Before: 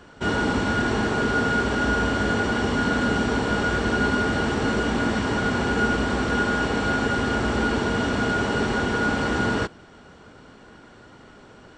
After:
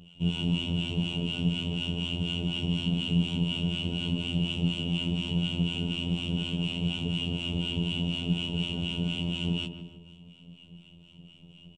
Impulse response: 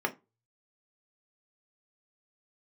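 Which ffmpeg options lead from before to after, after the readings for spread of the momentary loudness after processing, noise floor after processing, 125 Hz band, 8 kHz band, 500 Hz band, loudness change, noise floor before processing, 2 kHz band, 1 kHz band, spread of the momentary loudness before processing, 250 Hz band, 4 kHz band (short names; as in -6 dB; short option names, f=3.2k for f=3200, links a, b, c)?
3 LU, -54 dBFS, -0.5 dB, -13.5 dB, -16.5 dB, -6.5 dB, -48 dBFS, -16.0 dB, -24.5 dB, 1 LU, -5.5 dB, +2.5 dB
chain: -filter_complex "[0:a]firequalizer=gain_entry='entry(100,0);entry(170,15);entry(240,-7);entry(480,-10);entry(990,-16);entry(1700,-30);entry(2800,15);entry(4300,-14);entry(9200,-1)':delay=0.05:min_phase=1,acrossover=split=810[a][b];[a]aeval=exprs='val(0)*(1-0.7/2+0.7/2*cos(2*PI*4.1*n/s))':c=same[c];[b]aeval=exprs='val(0)*(1-0.7/2-0.7/2*cos(2*PI*4.1*n/s))':c=same[d];[c][d]amix=inputs=2:normalize=0,afftfilt=real='hypot(re,im)*cos(PI*b)':imag='0':win_size=2048:overlap=0.75,asplit=2[e][f];[f]adelay=154,lowpass=f=1.1k:p=1,volume=-7dB,asplit=2[g][h];[h]adelay=154,lowpass=f=1.1k:p=1,volume=0.54,asplit=2[i][j];[j]adelay=154,lowpass=f=1.1k:p=1,volume=0.54,asplit=2[k][l];[l]adelay=154,lowpass=f=1.1k:p=1,volume=0.54,asplit=2[m][n];[n]adelay=154,lowpass=f=1.1k:p=1,volume=0.54,asplit=2[o][p];[p]adelay=154,lowpass=f=1.1k:p=1,volume=0.54,asplit=2[q][r];[r]adelay=154,lowpass=f=1.1k:p=1,volume=0.54[s];[g][i][k][m][o][q][s]amix=inputs=7:normalize=0[t];[e][t]amix=inputs=2:normalize=0"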